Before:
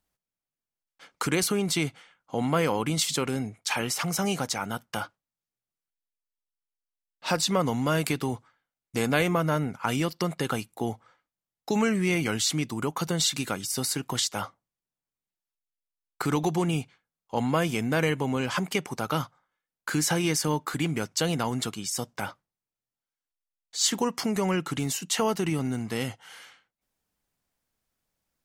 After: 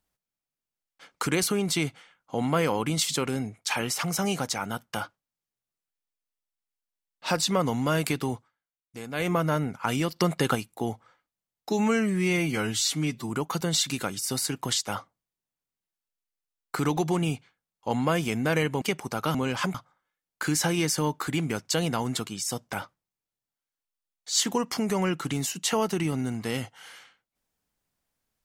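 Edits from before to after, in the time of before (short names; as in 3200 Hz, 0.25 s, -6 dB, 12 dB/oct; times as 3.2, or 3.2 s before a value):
8.32–9.31 dip -12.5 dB, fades 0.19 s
10.16–10.55 gain +4 dB
11.69–12.76 stretch 1.5×
18.28–18.68 move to 19.21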